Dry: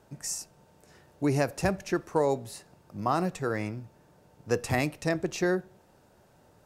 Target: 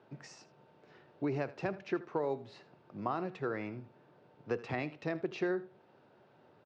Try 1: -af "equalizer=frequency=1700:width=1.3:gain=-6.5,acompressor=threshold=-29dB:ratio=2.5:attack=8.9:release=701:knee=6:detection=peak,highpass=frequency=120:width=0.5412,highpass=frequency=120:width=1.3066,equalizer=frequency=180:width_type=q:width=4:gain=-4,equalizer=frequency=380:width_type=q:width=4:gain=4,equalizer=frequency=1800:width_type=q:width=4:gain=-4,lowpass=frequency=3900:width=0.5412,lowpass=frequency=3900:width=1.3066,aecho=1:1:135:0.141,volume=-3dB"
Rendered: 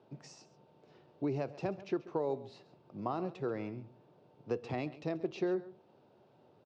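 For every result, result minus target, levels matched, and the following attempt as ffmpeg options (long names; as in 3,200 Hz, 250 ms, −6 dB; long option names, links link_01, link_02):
echo 56 ms late; 2,000 Hz band −7.0 dB
-af "equalizer=frequency=1700:width=1.3:gain=-6.5,acompressor=threshold=-29dB:ratio=2.5:attack=8.9:release=701:knee=6:detection=peak,highpass=frequency=120:width=0.5412,highpass=frequency=120:width=1.3066,equalizer=frequency=180:width_type=q:width=4:gain=-4,equalizer=frequency=380:width_type=q:width=4:gain=4,equalizer=frequency=1800:width_type=q:width=4:gain=-4,lowpass=frequency=3900:width=0.5412,lowpass=frequency=3900:width=1.3066,aecho=1:1:79:0.141,volume=-3dB"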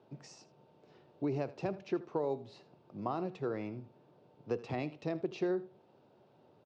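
2,000 Hz band −7.0 dB
-af "equalizer=frequency=1700:width=1.3:gain=3.5,acompressor=threshold=-29dB:ratio=2.5:attack=8.9:release=701:knee=6:detection=peak,highpass=frequency=120:width=0.5412,highpass=frequency=120:width=1.3066,equalizer=frequency=180:width_type=q:width=4:gain=-4,equalizer=frequency=380:width_type=q:width=4:gain=4,equalizer=frequency=1800:width_type=q:width=4:gain=-4,lowpass=frequency=3900:width=0.5412,lowpass=frequency=3900:width=1.3066,aecho=1:1:79:0.141,volume=-3dB"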